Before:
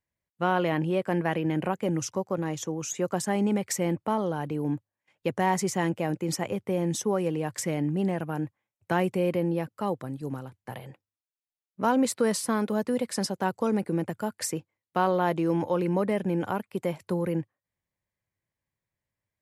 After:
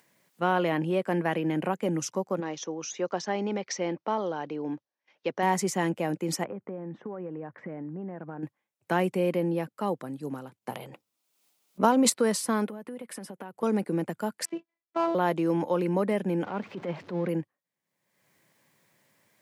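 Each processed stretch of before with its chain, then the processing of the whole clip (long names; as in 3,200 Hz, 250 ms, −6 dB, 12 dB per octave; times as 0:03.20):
0:02.40–0:05.43: Chebyshev low-pass filter 6,000 Hz, order 5 + bass and treble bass −10 dB, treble +2 dB
0:06.44–0:08.43: low-pass filter 1,800 Hz 24 dB per octave + downward compressor 12 to 1, threshold −32 dBFS
0:10.56–0:12.10: parametric band 1,700 Hz −7 dB 0.41 octaves + transient designer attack +6 dB, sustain +11 dB
0:12.67–0:13.63: flat-topped bell 5,400 Hz −9.5 dB 1.2 octaves + downward compressor, threshold −36 dBFS
0:14.45–0:15.15: gap after every zero crossing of 0.084 ms + low-pass filter 3,100 Hz + phases set to zero 334 Hz
0:16.44–0:17.29: converter with a step at zero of −38.5 dBFS + transient designer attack −10 dB, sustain +1 dB + high-frequency loss of the air 210 metres
whole clip: high-pass filter 160 Hz 24 dB per octave; upward compression, threshold −48 dBFS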